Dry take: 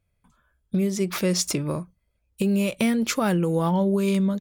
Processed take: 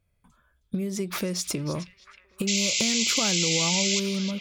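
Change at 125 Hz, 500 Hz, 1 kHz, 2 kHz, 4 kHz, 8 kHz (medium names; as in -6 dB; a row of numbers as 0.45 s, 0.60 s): -6.0 dB, -6.0 dB, -6.0 dB, +3.5 dB, +9.0 dB, +7.0 dB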